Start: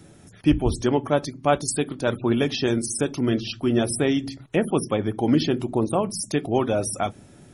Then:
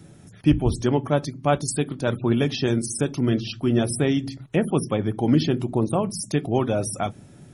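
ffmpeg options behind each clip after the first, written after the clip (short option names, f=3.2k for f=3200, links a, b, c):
-af "equalizer=f=140:w=1.3:g=6.5,volume=-1.5dB"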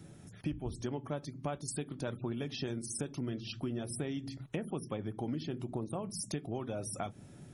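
-af "acompressor=threshold=-29dB:ratio=6,volume=-5.5dB"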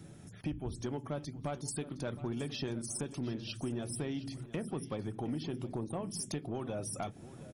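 -af "asoftclip=type=tanh:threshold=-28dB,aecho=1:1:715|1430|2145|2860:0.158|0.065|0.0266|0.0109,volume=1dB"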